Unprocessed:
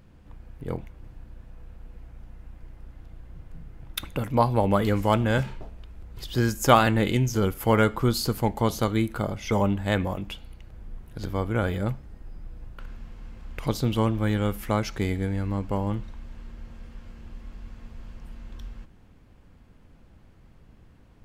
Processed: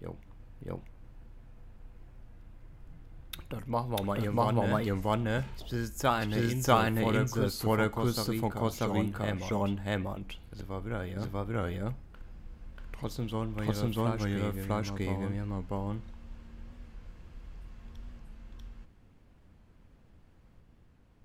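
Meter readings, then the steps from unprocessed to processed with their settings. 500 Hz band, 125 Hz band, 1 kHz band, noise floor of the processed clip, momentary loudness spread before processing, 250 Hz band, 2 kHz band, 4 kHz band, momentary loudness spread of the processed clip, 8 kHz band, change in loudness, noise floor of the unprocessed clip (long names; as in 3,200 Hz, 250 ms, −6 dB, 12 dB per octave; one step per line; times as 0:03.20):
−6.0 dB, −5.5 dB, −6.0 dB, −59 dBFS, 23 LU, −5.5 dB, −5.5 dB, −6.0 dB, 22 LU, −5.5 dB, −6.5 dB, −53 dBFS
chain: backwards echo 642 ms −3 dB
wow of a warped record 45 rpm, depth 100 cents
level −7.5 dB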